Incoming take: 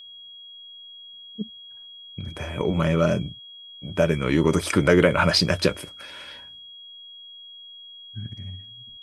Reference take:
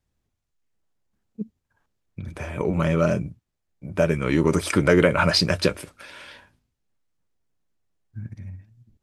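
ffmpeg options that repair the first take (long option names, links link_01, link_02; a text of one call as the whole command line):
ffmpeg -i in.wav -af "bandreject=frequency=3300:width=30" out.wav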